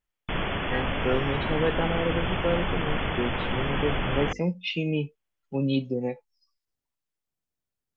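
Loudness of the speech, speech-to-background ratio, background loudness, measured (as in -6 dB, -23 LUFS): -30.0 LUFS, -0.5 dB, -29.5 LUFS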